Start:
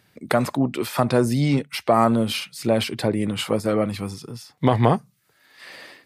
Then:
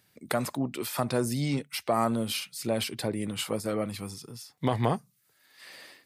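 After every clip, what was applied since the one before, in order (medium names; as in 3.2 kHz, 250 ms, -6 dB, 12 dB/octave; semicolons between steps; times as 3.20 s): treble shelf 4.7 kHz +10 dB; trim -9 dB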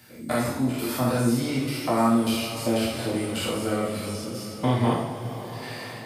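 spectrogram pixelated in time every 100 ms; two-slope reverb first 0.56 s, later 4.7 s, from -18 dB, DRR -5.5 dB; three bands compressed up and down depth 40%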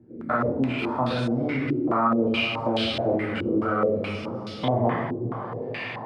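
peak limiter -17.5 dBFS, peak gain reduction 8 dB; step-sequenced low-pass 4.7 Hz 350–3600 Hz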